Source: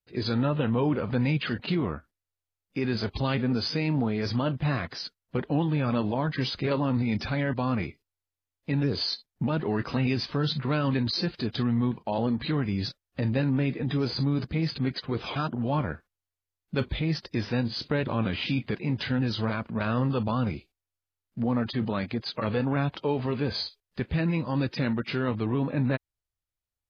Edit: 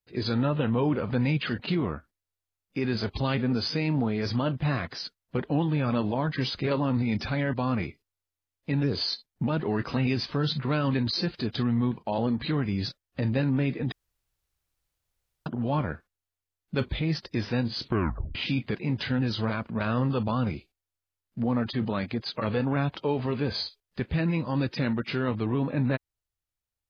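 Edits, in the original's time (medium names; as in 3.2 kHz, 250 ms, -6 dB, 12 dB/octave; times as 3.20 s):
13.92–15.46 s: room tone
17.83 s: tape stop 0.52 s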